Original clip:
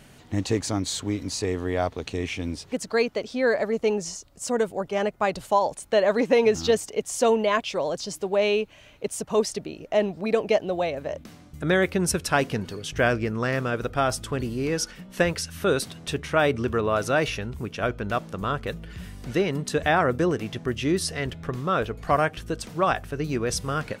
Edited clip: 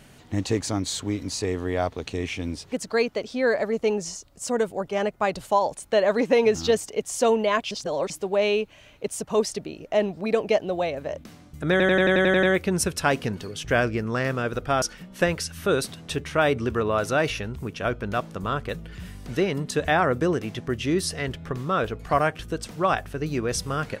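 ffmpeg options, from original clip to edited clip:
-filter_complex "[0:a]asplit=12[s0][s1][s2][s3][s4][s5][s6][s7][s8][s9][s10][s11];[s0]atrim=end=7.712[s12];[s1]atrim=start=7.708:end=8.102,asetpts=PTS-STARTPTS,areverse[s13];[s2]atrim=start=8.098:end=11.802[s14];[s3]atrim=start=11.708:end=11.802[s15];[s4]atrim=start=11.708:end=11.802[s16];[s5]atrim=start=11.708:end=11.802[s17];[s6]atrim=start=11.708:end=11.802[s18];[s7]atrim=start=11.708:end=11.802[s19];[s8]atrim=start=11.708:end=11.802[s20];[s9]atrim=start=11.708:end=11.802[s21];[s10]atrim=start=11.708:end=14.102[s22];[s11]atrim=start=14.798[s23];[s12][s13]acrossfade=d=0.004:c1=hsin:c2=hsin[s24];[s24][s14]acrossfade=d=0.004:c1=hsin:c2=hsin[s25];[s25][s15]acrossfade=d=0.004:c1=hsin:c2=hsin[s26];[s26][s16]acrossfade=d=0.004:c1=hsin:c2=hsin[s27];[s27][s17]acrossfade=d=0.004:c1=hsin:c2=hsin[s28];[s28][s18]acrossfade=d=0.004:c1=hsin:c2=hsin[s29];[s29][s19]acrossfade=d=0.004:c1=hsin:c2=hsin[s30];[s30][s20]acrossfade=d=0.004:c1=hsin:c2=hsin[s31];[s31][s21]acrossfade=d=0.004:c1=hsin:c2=hsin[s32];[s32][s22]acrossfade=d=0.004:c1=hsin:c2=hsin[s33];[s33][s23]acrossfade=d=0.004:c1=hsin:c2=hsin"

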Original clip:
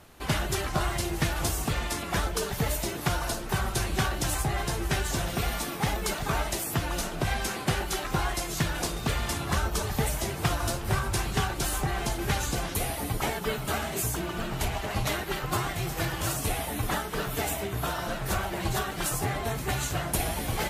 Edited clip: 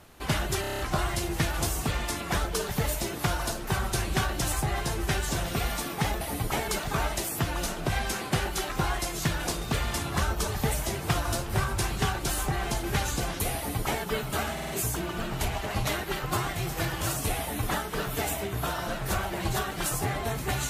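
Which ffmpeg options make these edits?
-filter_complex "[0:a]asplit=12[s0][s1][s2][s3][s4][s5][s6][s7][s8][s9][s10][s11];[s0]atrim=end=0.642[s12];[s1]atrim=start=0.608:end=0.642[s13];[s2]atrim=start=0.608:end=0.642[s14];[s3]atrim=start=0.608:end=0.642[s15];[s4]atrim=start=0.608:end=0.642[s16];[s5]atrim=start=0.608:end=0.642[s17];[s6]atrim=start=0.608:end=6.032[s18];[s7]atrim=start=12.908:end=13.382[s19];[s8]atrim=start=6.028:end=13.932[s20];[s9]atrim=start=13.878:end=13.932[s21];[s10]atrim=start=13.878:end=13.932[s22];[s11]atrim=start=13.878[s23];[s12][s13]acrossfade=d=0.004:c1=hsin:c2=hsin[s24];[s24][s14]acrossfade=d=0.004:c1=hsin:c2=hsin[s25];[s25][s15]acrossfade=d=0.004:c1=hsin:c2=hsin[s26];[s26][s16]acrossfade=d=0.004:c1=hsin:c2=hsin[s27];[s27][s17]acrossfade=d=0.004:c1=hsin:c2=hsin[s28];[s28][s18]acrossfade=d=0.004:c1=hsin:c2=hsin[s29];[s29][s19]acrossfade=d=0.004:c1=hsin:c2=hsin[s30];[s30][s20]acrossfade=d=0.004:c1=hsin:c2=hsin[s31];[s31][s21]acrossfade=d=0.004:c1=hsin:c2=hsin[s32];[s32][s22]acrossfade=d=0.004:c1=hsin:c2=hsin[s33];[s33][s23]acrossfade=d=0.004:c1=hsin:c2=hsin"

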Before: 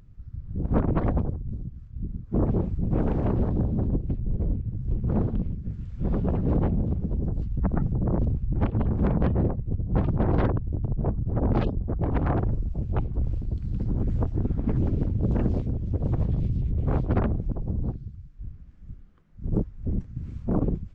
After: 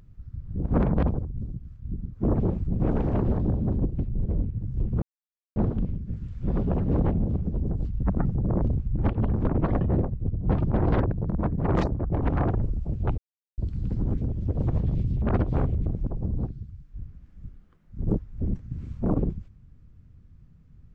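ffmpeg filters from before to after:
-filter_complex "[0:a]asplit=13[s0][s1][s2][s3][s4][s5][s6][s7][s8][s9][s10][s11][s12];[s0]atrim=end=0.782[s13];[s1]atrim=start=9.018:end=9.272[s14];[s2]atrim=start=1.138:end=5.13,asetpts=PTS-STARTPTS,afade=t=out:st=3.988:d=0.004:c=hsin,apad=pad_dur=0.54[s15];[s3]atrim=start=5.13:end=9.022,asetpts=PTS-STARTPTS,afade=t=in:d=0.004:c=hsin[s16];[s4]atrim=start=0.778:end=1.142[s17];[s5]atrim=start=9.268:end=10.574[s18];[s6]atrim=start=10.57:end=11.9,asetpts=PTS-STARTPTS,asetrate=65268,aresample=44100,atrim=end_sample=39630,asetpts=PTS-STARTPTS[s19];[s7]atrim=start=11.896:end=13.07,asetpts=PTS-STARTPTS,afade=t=out:st=1.17:d=0.004:c=hsin[s20];[s8]atrim=start=13.07:end=13.47,asetpts=PTS-STARTPTS,volume=0[s21];[s9]atrim=start=13.47:end=14.072,asetpts=PTS-STARTPTS,afade=t=in:d=0.004:c=hsin[s22];[s10]atrim=start=15.628:end=16.672[s23];[s11]atrim=start=16.668:end=17.312,asetpts=PTS-STARTPTS,areverse[s24];[s12]atrim=start=17.308[s25];[s13][s14]acrossfade=d=0.004:c1=hsin:c2=hsin[s26];[s15][s16]concat=n=2:v=0:a=1[s27];[s26][s27]acrossfade=d=0.004:c1=hsin:c2=hsin[s28];[s28][s17]acrossfade=d=0.004:c1=hsin:c2=hsin[s29];[s29][s18]acrossfade=d=0.004:c1=hsin:c2=hsin[s30];[s30][s19]acrossfade=d=0.004:c1=hsin:c2=hsin[s31];[s20][s21][s22]concat=n=3:v=0:a=1[s32];[s31][s32]acrossfade=d=0.004:c1=hsin:c2=hsin[s33];[s33][s23]acrossfade=d=0.004:c1=hsin:c2=hsin[s34];[s34][s24]acrossfade=d=0.004:c1=hsin:c2=hsin[s35];[s35][s25]acrossfade=d=0.004:c1=hsin:c2=hsin"

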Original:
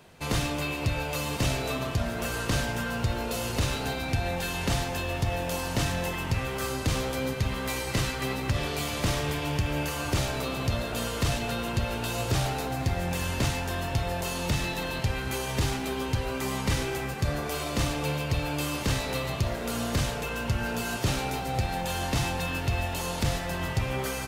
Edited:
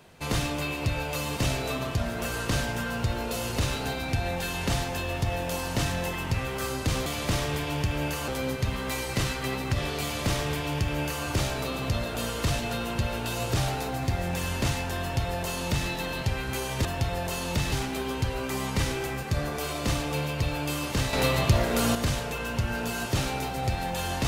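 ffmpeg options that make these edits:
-filter_complex "[0:a]asplit=7[s0][s1][s2][s3][s4][s5][s6];[s0]atrim=end=7.062[s7];[s1]atrim=start=8.808:end=10.032[s8];[s2]atrim=start=7.058:end=15.632[s9];[s3]atrim=start=13.788:end=14.662[s10];[s4]atrim=start=15.628:end=19.042[s11];[s5]atrim=start=19.038:end=19.862,asetpts=PTS-STARTPTS,volume=2.11[s12];[s6]atrim=start=19.858[s13];[s7][s8]acrossfade=d=0.004:c1=hsin:c2=hsin[s14];[s14][s9]acrossfade=d=0.004:c1=hsin:c2=hsin[s15];[s15][s10]acrossfade=d=0.004:c1=hsin:c2=hsin[s16];[s16][s11]acrossfade=d=0.004:c1=hsin:c2=hsin[s17];[s17][s12]acrossfade=d=0.004:c1=hsin:c2=hsin[s18];[s18][s13]acrossfade=d=0.004:c1=hsin:c2=hsin"

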